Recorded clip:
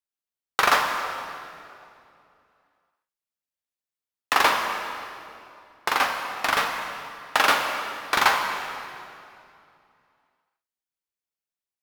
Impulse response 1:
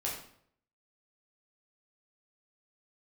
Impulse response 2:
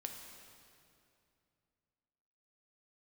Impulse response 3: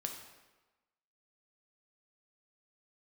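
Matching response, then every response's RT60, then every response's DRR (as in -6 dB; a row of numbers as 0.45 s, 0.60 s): 2; 0.65 s, 2.6 s, 1.2 s; -4.5 dB, 2.5 dB, 2.5 dB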